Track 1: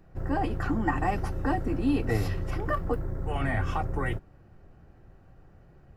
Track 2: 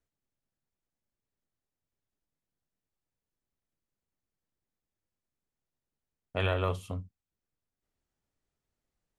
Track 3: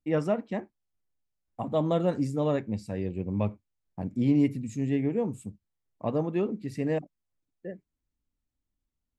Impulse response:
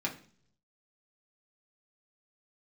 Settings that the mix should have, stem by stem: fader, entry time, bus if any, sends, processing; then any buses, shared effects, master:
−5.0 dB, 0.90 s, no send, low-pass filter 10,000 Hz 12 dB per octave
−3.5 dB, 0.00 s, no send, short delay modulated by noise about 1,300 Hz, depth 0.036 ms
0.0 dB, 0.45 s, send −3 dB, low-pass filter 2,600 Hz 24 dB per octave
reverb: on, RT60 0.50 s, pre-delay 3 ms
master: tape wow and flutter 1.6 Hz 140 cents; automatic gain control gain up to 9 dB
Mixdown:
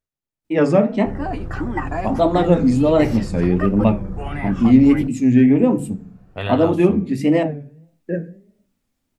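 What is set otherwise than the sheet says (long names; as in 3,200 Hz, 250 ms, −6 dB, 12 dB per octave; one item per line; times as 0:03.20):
stem 2: missing short delay modulated by noise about 1,300 Hz, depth 0.036 ms
stem 3: missing low-pass filter 2,600 Hz 24 dB per octave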